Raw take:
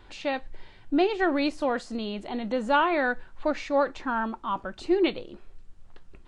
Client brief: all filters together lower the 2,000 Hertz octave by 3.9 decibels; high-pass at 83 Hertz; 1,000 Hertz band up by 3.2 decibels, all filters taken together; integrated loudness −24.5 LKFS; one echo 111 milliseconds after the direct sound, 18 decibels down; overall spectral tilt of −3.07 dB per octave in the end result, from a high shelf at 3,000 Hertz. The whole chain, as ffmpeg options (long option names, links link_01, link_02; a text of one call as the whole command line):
ffmpeg -i in.wav -af "highpass=83,equalizer=frequency=1000:width_type=o:gain=6,equalizer=frequency=2000:width_type=o:gain=-8,highshelf=frequency=3000:gain=-3,aecho=1:1:111:0.126,volume=2dB" out.wav